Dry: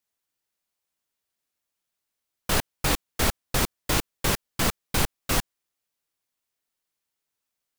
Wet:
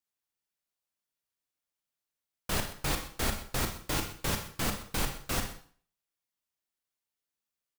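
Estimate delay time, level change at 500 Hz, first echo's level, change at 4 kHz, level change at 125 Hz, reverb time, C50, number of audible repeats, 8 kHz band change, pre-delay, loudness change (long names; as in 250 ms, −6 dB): 126 ms, −7.0 dB, −16.5 dB, −6.5 dB, −6.0 dB, 0.50 s, 8.0 dB, 1, −7.0 dB, 19 ms, −7.0 dB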